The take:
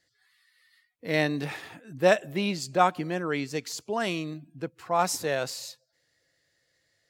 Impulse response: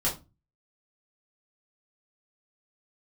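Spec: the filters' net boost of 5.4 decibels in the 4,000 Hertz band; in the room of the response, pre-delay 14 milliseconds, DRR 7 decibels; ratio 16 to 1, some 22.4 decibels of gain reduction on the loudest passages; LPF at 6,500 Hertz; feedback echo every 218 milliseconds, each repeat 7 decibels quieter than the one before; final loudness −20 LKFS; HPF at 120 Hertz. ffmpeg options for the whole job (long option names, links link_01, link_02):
-filter_complex "[0:a]highpass=120,lowpass=6500,equalizer=frequency=4000:width_type=o:gain=7.5,acompressor=threshold=-37dB:ratio=16,aecho=1:1:218|436|654|872|1090:0.447|0.201|0.0905|0.0407|0.0183,asplit=2[link_01][link_02];[1:a]atrim=start_sample=2205,adelay=14[link_03];[link_02][link_03]afir=irnorm=-1:irlink=0,volume=-15.5dB[link_04];[link_01][link_04]amix=inputs=2:normalize=0,volume=20.5dB"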